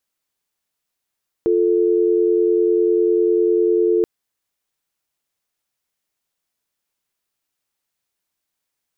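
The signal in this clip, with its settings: call progress tone dial tone, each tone -16 dBFS 2.58 s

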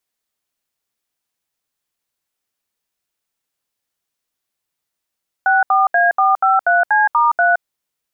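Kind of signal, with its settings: DTMF "64A453C*3", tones 169 ms, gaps 72 ms, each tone -13 dBFS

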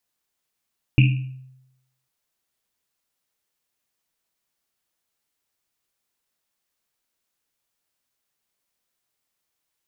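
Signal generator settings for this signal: Risset drum, pitch 130 Hz, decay 0.89 s, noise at 2.6 kHz, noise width 450 Hz, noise 20%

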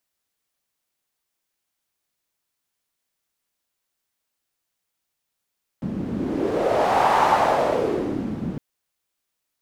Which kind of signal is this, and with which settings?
wind-like swept noise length 2.76 s, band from 200 Hz, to 870 Hz, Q 3.3, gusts 1, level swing 10.5 dB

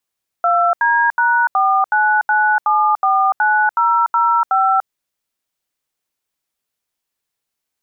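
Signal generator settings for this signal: DTMF "2D#499749005", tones 292 ms, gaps 78 ms, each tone -14 dBFS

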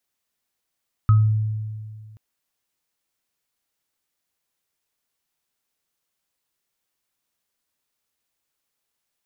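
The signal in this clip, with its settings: sine partials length 1.08 s, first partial 108 Hz, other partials 1.27 kHz, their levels -13 dB, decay 1.99 s, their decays 0.29 s, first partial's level -10 dB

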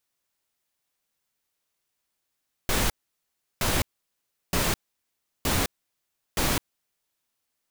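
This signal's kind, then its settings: noise bursts pink, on 0.21 s, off 0.71 s, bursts 5, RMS -24 dBFS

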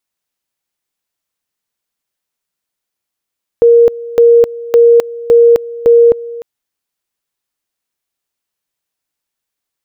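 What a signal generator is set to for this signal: two-level tone 469 Hz -2.5 dBFS, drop 19 dB, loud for 0.26 s, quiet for 0.30 s, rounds 5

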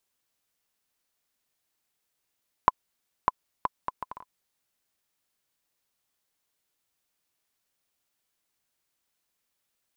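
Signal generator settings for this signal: bouncing ball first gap 0.60 s, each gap 0.62, 1.01 kHz, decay 28 ms -4 dBFS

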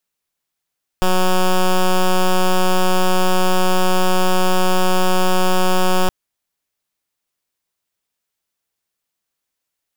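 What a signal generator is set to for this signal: pulse 184 Hz, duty 9% -13.5 dBFS 5.07 s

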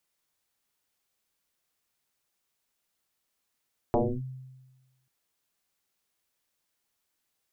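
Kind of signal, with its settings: FM tone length 1.14 s, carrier 130 Hz, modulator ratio 0.91, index 6.4, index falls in 0.28 s linear, decay 1.23 s, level -19 dB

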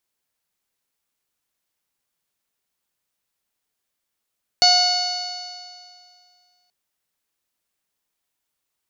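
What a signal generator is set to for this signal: stretched partials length 2.08 s, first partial 719 Hz, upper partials -12/-11/-9/-13/5/-7/-8/-14 dB, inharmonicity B 0.0018, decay 2.24 s, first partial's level -16.5 dB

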